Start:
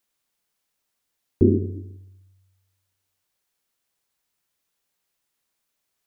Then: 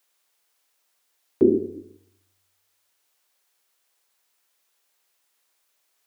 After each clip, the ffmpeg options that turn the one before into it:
ffmpeg -i in.wav -af "highpass=420,volume=7dB" out.wav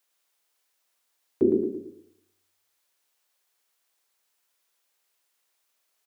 ffmpeg -i in.wav -af "aecho=1:1:112|224|336|448:0.501|0.175|0.0614|0.0215,volume=-4.5dB" out.wav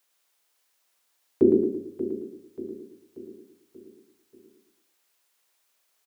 ffmpeg -i in.wav -af "aecho=1:1:584|1168|1752|2336|2920:0.251|0.123|0.0603|0.0296|0.0145,volume=3dB" out.wav

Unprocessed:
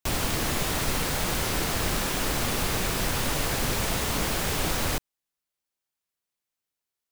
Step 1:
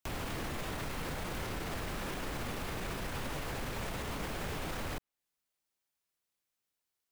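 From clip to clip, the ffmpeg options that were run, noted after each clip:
ffmpeg -i in.wav -filter_complex "[0:a]acrossover=split=620|3100[link_01][link_02][link_03];[link_01]acompressor=threshold=-31dB:ratio=4[link_04];[link_02]acompressor=threshold=-37dB:ratio=4[link_05];[link_03]acompressor=threshold=-46dB:ratio=4[link_06];[link_04][link_05][link_06]amix=inputs=3:normalize=0,alimiter=level_in=5.5dB:limit=-24dB:level=0:latency=1:release=45,volume=-5.5dB" out.wav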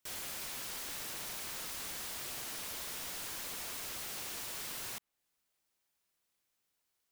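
ffmpeg -i in.wav -af "aeval=exprs='(mod(126*val(0)+1,2)-1)/126':channel_layout=same,volume=4.5dB" out.wav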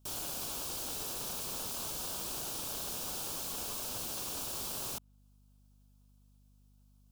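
ffmpeg -i in.wav -filter_complex "[0:a]acrossover=split=280|2800[link_01][link_02][link_03];[link_02]acrusher=samples=20:mix=1:aa=0.000001[link_04];[link_01][link_04][link_03]amix=inputs=3:normalize=0,aeval=exprs='val(0)+0.000501*(sin(2*PI*50*n/s)+sin(2*PI*2*50*n/s)/2+sin(2*PI*3*50*n/s)/3+sin(2*PI*4*50*n/s)/4+sin(2*PI*5*50*n/s)/5)':channel_layout=same,volume=3.5dB" out.wav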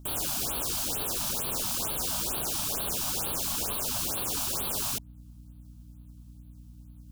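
ffmpeg -i in.wav -af "aeval=exprs='val(0)+0.00158*(sin(2*PI*60*n/s)+sin(2*PI*2*60*n/s)/2+sin(2*PI*3*60*n/s)/3+sin(2*PI*4*60*n/s)/4+sin(2*PI*5*60*n/s)/5)':channel_layout=same,afftfilt=real='re*(1-between(b*sr/1024,380*pow(6800/380,0.5+0.5*sin(2*PI*2.2*pts/sr))/1.41,380*pow(6800/380,0.5+0.5*sin(2*PI*2.2*pts/sr))*1.41))':imag='im*(1-between(b*sr/1024,380*pow(6800/380,0.5+0.5*sin(2*PI*2.2*pts/sr))/1.41,380*pow(6800/380,0.5+0.5*sin(2*PI*2.2*pts/sr))*1.41))':win_size=1024:overlap=0.75,volume=8.5dB" out.wav

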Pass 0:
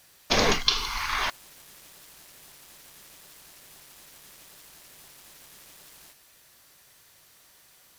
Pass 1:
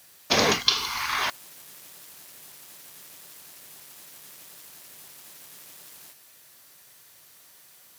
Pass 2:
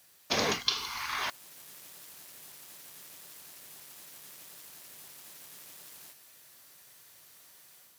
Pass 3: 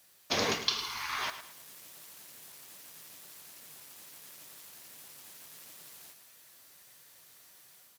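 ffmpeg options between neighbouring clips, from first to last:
ffmpeg -i in.wav -af "highpass=100,highshelf=frequency=9200:gain=6,volume=1dB" out.wav
ffmpeg -i in.wav -af "dynaudnorm=framelen=410:gausssize=3:maxgain=4.5dB,volume=-7.5dB" out.wav
ffmpeg -i in.wav -af "flanger=delay=2.9:depth=9.1:regen=64:speed=1.4:shape=triangular,aecho=1:1:108|216|324|432:0.251|0.0904|0.0326|0.0117,volume=3dB" out.wav

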